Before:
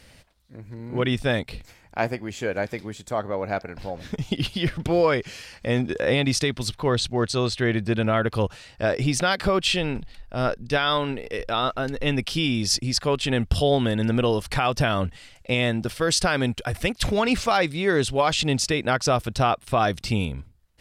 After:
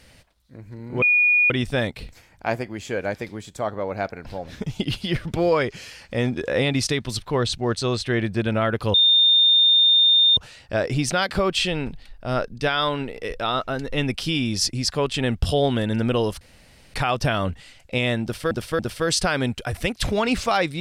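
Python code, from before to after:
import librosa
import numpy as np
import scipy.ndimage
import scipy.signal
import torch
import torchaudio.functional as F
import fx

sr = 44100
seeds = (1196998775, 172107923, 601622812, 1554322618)

y = fx.edit(x, sr, fx.insert_tone(at_s=1.02, length_s=0.48, hz=2450.0, db=-14.0),
    fx.insert_tone(at_s=8.46, length_s=1.43, hz=3630.0, db=-12.5),
    fx.insert_room_tone(at_s=14.5, length_s=0.53),
    fx.repeat(start_s=15.79, length_s=0.28, count=3), tone=tone)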